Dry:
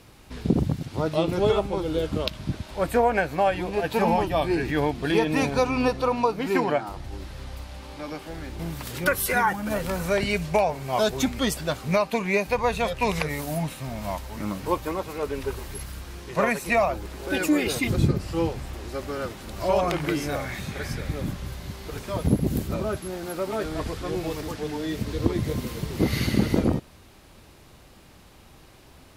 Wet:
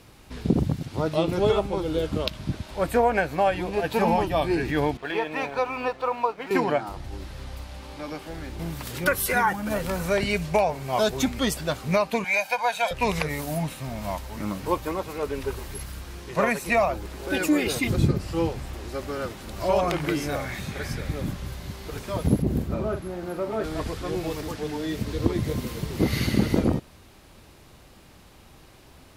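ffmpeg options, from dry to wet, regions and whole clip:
-filter_complex "[0:a]asettb=1/sr,asplit=3[s0][s1][s2];[s0]atrim=end=4.974[s3];[s1]atrim=start=4.97:end=6.51,asetpts=PTS-STARTPTS,afade=t=in:d=0.004:c=qsin,afade=t=out:st=1.536:d=0.004:c=qsin,acrossover=split=460 3300:gain=0.178 1 0.158[s4][s5][s6];[s4][s5][s6]amix=inputs=3:normalize=0,aeval=exprs='sgn(val(0))*max(abs(val(0))-0.00224,0)':c=same[s7];[s2]atrim=start=6.506[s8];[s3][s7]acrossfade=d=0.004:c1=hsin:c2=qsin[s9];[s9][s8]acrossfade=d=0.004:c1=qsin:c2=hsin,asettb=1/sr,asplit=3[s10][s11][s12];[s10]atrim=end=12.244[s13];[s11]atrim=start=12.24:end=12.91,asetpts=PTS-STARTPTS,afade=t=in:d=0.004:c=qsin,afade=t=out:st=0.666:d=0.004:c=qsin,highpass=620,aecho=1:1:1.3:0.85,atrim=end_sample=29547[s14];[s12]atrim=start=12.906[s15];[s13][s14]acrossfade=d=0.004:c1=hsin:c2=qsin[s16];[s16][s15]acrossfade=d=0.004:c1=qsin:c2=hsin,asettb=1/sr,asplit=3[s17][s18][s19];[s17]atrim=end=22.424[s20];[s18]atrim=start=22.42:end=23.64,asetpts=PTS-STARTPTS,afade=t=in:d=0.004:c=qsin,afade=t=out:st=1.216:d=0.004:c=qsin,highshelf=f=2700:g=-11,asplit=2[s21][s22];[s22]adelay=45,volume=0.376[s23];[s21][s23]amix=inputs=2:normalize=0,atrim=end_sample=53802[s24];[s19]atrim=start=23.636[s25];[s20][s24]acrossfade=d=0.004:c1=hsin:c2=qsin[s26];[s26][s25]acrossfade=d=0.004:c1=qsin:c2=hsin"

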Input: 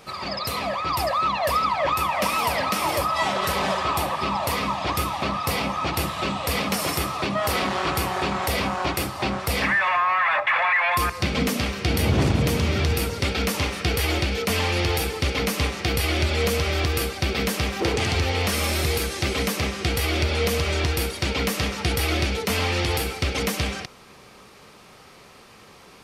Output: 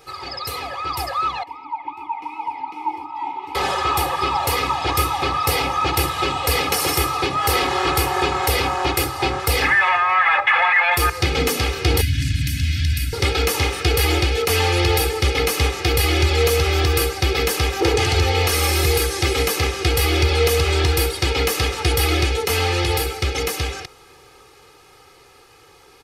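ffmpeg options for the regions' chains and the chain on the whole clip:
-filter_complex "[0:a]asettb=1/sr,asplit=3[s0][s1][s2];[s0]atrim=end=1.434[s3];[s1]atrim=start=1.43:end=3.55,asetpts=PTS-STARTPTS,afade=t=in:d=0.004:c=qsin,afade=t=out:st=2.116:d=0.004:c=qsin,asplit=3[s4][s5][s6];[s4]bandpass=f=300:t=q:w=8,volume=1[s7];[s5]bandpass=f=870:t=q:w=8,volume=0.501[s8];[s6]bandpass=f=2240:t=q:w=8,volume=0.355[s9];[s7][s8][s9]amix=inputs=3:normalize=0,equalizer=f=920:w=6.2:g=12[s10];[s2]atrim=start=3.546[s11];[s3][s10]acrossfade=d=0.004:c1=hsin:c2=qsin[s12];[s12][s11]acrossfade=d=0.004:c1=qsin:c2=hsin,asettb=1/sr,asplit=3[s13][s14][s15];[s13]atrim=end=12.014[s16];[s14]atrim=start=12.01:end=13.13,asetpts=PTS-STARTPTS,afade=t=in:d=0.004:c=qsin,afade=t=out:st=1.116:d=0.004:c=qsin,asoftclip=type=hard:threshold=0.299,acrossover=split=900|3400[s17][s18][s19];[s17]acompressor=threshold=0.1:ratio=4[s20];[s18]acompressor=threshold=0.0158:ratio=4[s21];[s19]acompressor=threshold=0.0158:ratio=4[s22];[s20][s21][s22]amix=inputs=3:normalize=0,asuperstop=centerf=650:order=20:qfactor=0.53[s23];[s15]atrim=start=13.126[s24];[s16][s23]acrossfade=d=0.004:c1=hsin:c2=qsin[s25];[s25][s24]acrossfade=d=0.004:c1=qsin:c2=hsin,highshelf=f=11000:g=5,aecho=1:1:2.4:0.92,dynaudnorm=f=320:g=21:m=3.76,volume=0.631"

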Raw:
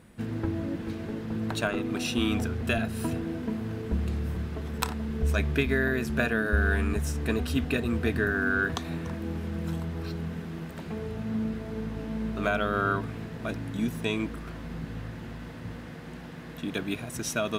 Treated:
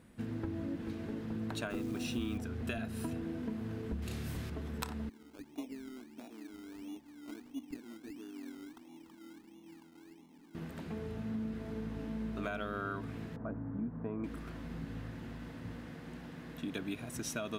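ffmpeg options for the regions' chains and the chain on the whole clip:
-filter_complex "[0:a]asettb=1/sr,asplit=3[s0][s1][s2];[s0]atrim=end=1.704[s3];[s1]atrim=start=1.7:end=2.38,asetpts=PTS-STARTPTS,afade=t=in:d=0.004:c=qsin,afade=t=out:st=0.676:d=0.004:c=qsin,lowshelf=f=270:g=7.5,bandreject=f=50:t=h:w=6,bandreject=f=100:t=h:w=6,bandreject=f=150:t=h:w=6,bandreject=f=200:t=h:w=6,bandreject=f=250:t=h:w=6,acrusher=bits=8:dc=4:mix=0:aa=0.000001[s4];[s2]atrim=start=2.376[s5];[s3][s4]acrossfade=d=0.004:c1=hsin:c2=qsin[s6];[s6][s5]acrossfade=d=0.004:c1=qsin:c2=hsin,asettb=1/sr,asplit=3[s7][s8][s9];[s7]atrim=end=4.024[s10];[s8]atrim=start=4.02:end=4.5,asetpts=PTS-STARTPTS,afade=t=in:d=0.004:c=qsin,afade=t=out:st=0.476:d=0.004:c=qsin,highshelf=f=2500:g=12,asplit=2[s11][s12];[s12]adelay=35,volume=0.562[s13];[s11][s13]amix=inputs=2:normalize=0,atrim=end_sample=21168[s14];[s9]atrim=start=4.496[s15];[s10][s14]acrossfade=d=0.004:c1=hsin:c2=qsin[s16];[s16][s15]acrossfade=d=0.004:c1=qsin:c2=hsin,asettb=1/sr,asplit=3[s17][s18][s19];[s17]atrim=end=5.094[s20];[s18]atrim=start=5.09:end=10.55,asetpts=PTS-STARTPTS,afade=t=in:d=0.004:c=qsin,afade=t=out:st=5.456:d=0.004:c=qsin,asplit=3[s21][s22][s23];[s21]bandpass=f=300:t=q:w=8,volume=1[s24];[s22]bandpass=f=870:t=q:w=8,volume=0.501[s25];[s23]bandpass=f=2240:t=q:w=8,volume=0.355[s26];[s24][s25][s26]amix=inputs=3:normalize=0,equalizer=f=77:w=0.45:g=-13.5,acrusher=samples=20:mix=1:aa=0.000001:lfo=1:lforange=12:lforate=1.5[s27];[s19]atrim=start=10.546[s28];[s20][s27]acrossfade=d=0.004:c1=hsin:c2=qsin[s29];[s29][s28]acrossfade=d=0.004:c1=qsin:c2=hsin,asettb=1/sr,asplit=3[s30][s31][s32];[s30]atrim=end=13.364[s33];[s31]atrim=start=13.36:end=14.24,asetpts=PTS-STARTPTS,afade=t=in:d=0.004:c=qsin,afade=t=out:st=0.876:d=0.004:c=qsin,lowpass=f=1300:w=0.5412,lowpass=f=1300:w=1.3066,equalizer=f=360:w=7.5:g=-7.5[s34];[s32]atrim=start=14.236[s35];[s33][s34]acrossfade=d=0.004:c1=hsin:c2=qsin[s36];[s36][s35]acrossfade=d=0.004:c1=qsin:c2=hsin,equalizer=f=270:w=3.6:g=5,acompressor=threshold=0.0398:ratio=4,volume=0.473"

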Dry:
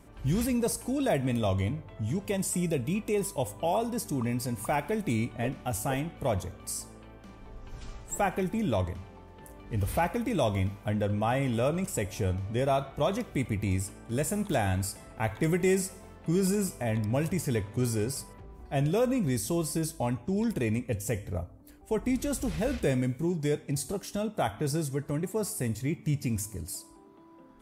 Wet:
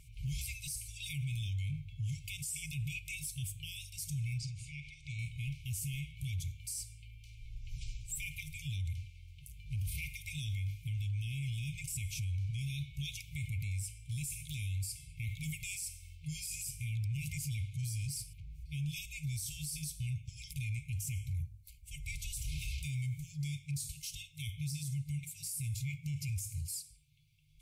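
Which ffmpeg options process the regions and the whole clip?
-filter_complex "[0:a]asettb=1/sr,asplit=3[s0][s1][s2];[s0]atrim=end=4.384[s3];[s1]atrim=start=4.38:end=5.19,asetpts=PTS-STARTPTS,afade=t=in:d=0.004:c=qsin,afade=t=out:st=0.806:d=0.004:c=qsin,acompressor=threshold=0.0178:ratio=4:attack=3.2:release=140:knee=1:detection=peak,lowpass=f=6600:w=0.5412,lowpass=f=6600:w=1.3066,asplit=2[s4][s5];[s5]adelay=47,volume=0.266[s6];[s4][s6]amix=inputs=2:normalize=0,atrim=end_sample=35721[s7];[s2]atrim=start=5.186[s8];[s3][s7]acrossfade=d=0.004:c1=hsin:c2=qsin[s9];[s9][s8]acrossfade=d=0.004:c1=qsin:c2=hsin,afftfilt=real='re*(1-between(b*sr/4096,160,2100))':imag='im*(1-between(b*sr/4096,160,2100))':win_size=4096:overlap=0.75,alimiter=level_in=2.51:limit=0.0631:level=0:latency=1:release=14,volume=0.398,volume=1.12"

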